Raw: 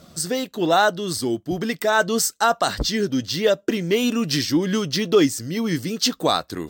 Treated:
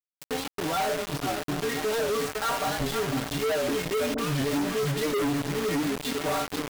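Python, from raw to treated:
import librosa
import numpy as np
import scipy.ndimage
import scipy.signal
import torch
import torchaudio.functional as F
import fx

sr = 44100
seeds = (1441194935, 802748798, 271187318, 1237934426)

y = fx.spec_trails(x, sr, decay_s=0.44)
y = fx.air_absorb(y, sr, metres=490.0)
y = fx.stiff_resonator(y, sr, f0_hz=140.0, decay_s=0.31, stiffness=0.008)
y = fx.echo_feedback(y, sr, ms=501, feedback_pct=38, wet_db=-10.5)
y = fx.quant_companded(y, sr, bits=2)
y = fx.dispersion(y, sr, late='highs', ms=42.0, hz=980.0, at=(4.14, 5.14))
y = fx.record_warp(y, sr, rpm=78.0, depth_cents=100.0)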